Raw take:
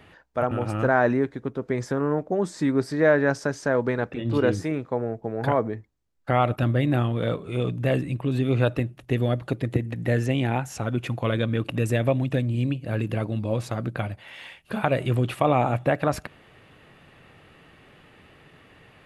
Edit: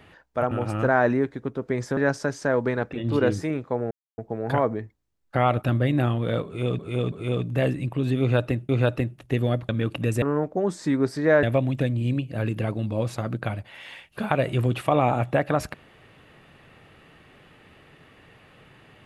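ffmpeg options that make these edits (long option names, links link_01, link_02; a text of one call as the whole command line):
ffmpeg -i in.wav -filter_complex "[0:a]asplit=9[link_01][link_02][link_03][link_04][link_05][link_06][link_07][link_08][link_09];[link_01]atrim=end=1.972[link_10];[link_02]atrim=start=3.178:end=5.12,asetpts=PTS-STARTPTS,afade=type=out:start_time=1.938:duration=0.004:curve=hsin,apad=pad_dur=0.27[link_11];[link_03]atrim=start=5.12:end=7.732,asetpts=PTS-STARTPTS,afade=type=in:duration=0.004:curve=hsin[link_12];[link_04]atrim=start=7.398:end=7.732[link_13];[link_05]atrim=start=7.398:end=8.972[link_14];[link_06]atrim=start=8.478:end=9.482[link_15];[link_07]atrim=start=11.428:end=11.962[link_16];[link_08]atrim=start=1.968:end=3.182[link_17];[link_09]atrim=start=11.958[link_18];[link_11][link_12]concat=n=2:v=0:a=1[link_19];[link_10][link_19]acrossfade=duration=0.004:curve1=hsin:curve2=hsin[link_20];[link_20][link_13]acrossfade=duration=0.004:curve1=hsin:curve2=hsin[link_21];[link_21][link_14]acrossfade=duration=0.004:curve1=hsin:curve2=hsin[link_22];[link_22][link_15]acrossfade=duration=0.004:curve1=hsin:curve2=hsin[link_23];[link_23][link_16]acrossfade=duration=0.004:curve1=hsin:curve2=hsin[link_24];[link_24][link_17]acrossfade=duration=0.004:curve1=hsin:curve2=hsin[link_25];[link_25][link_18]acrossfade=duration=0.004:curve1=hsin:curve2=hsin" out.wav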